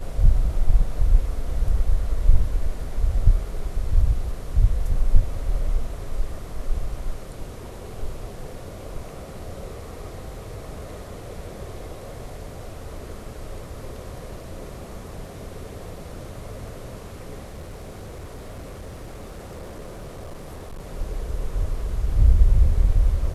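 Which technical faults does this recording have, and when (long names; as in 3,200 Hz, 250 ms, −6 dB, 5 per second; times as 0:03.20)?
0:17.46–0:20.81: clipping −32 dBFS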